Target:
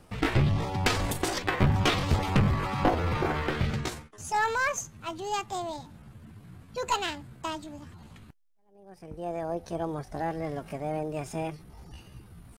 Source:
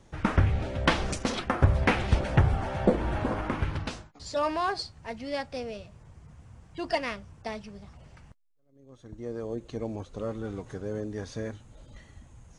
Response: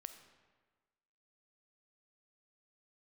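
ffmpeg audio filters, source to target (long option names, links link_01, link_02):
-af "aeval=exprs='0.335*(cos(1*acos(clip(val(0)/0.335,-1,1)))-cos(1*PI/2))+0.133*(cos(2*acos(clip(val(0)/0.335,-1,1)))-cos(2*PI/2))+0.0668*(cos(5*acos(clip(val(0)/0.335,-1,1)))-cos(5*PI/2))':channel_layout=same,asetrate=64194,aresample=44100,atempo=0.686977,volume=-4dB"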